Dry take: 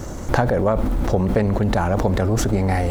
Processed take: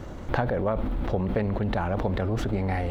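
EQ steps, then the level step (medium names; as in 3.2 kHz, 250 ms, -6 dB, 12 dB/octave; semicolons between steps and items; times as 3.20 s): resonant high shelf 4.7 kHz -10.5 dB, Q 1.5; -7.5 dB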